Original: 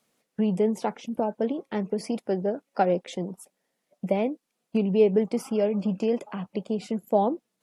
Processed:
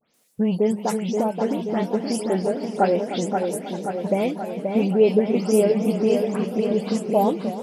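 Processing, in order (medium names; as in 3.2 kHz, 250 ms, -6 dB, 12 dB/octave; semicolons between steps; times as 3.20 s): delay that grows with frequency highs late, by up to 140 ms; treble shelf 5.4 kHz +11.5 dB; feedback echo behind a low-pass 529 ms, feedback 62%, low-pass 3.5 kHz, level -5 dB; modulated delay 310 ms, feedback 64%, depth 146 cents, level -13 dB; trim +3 dB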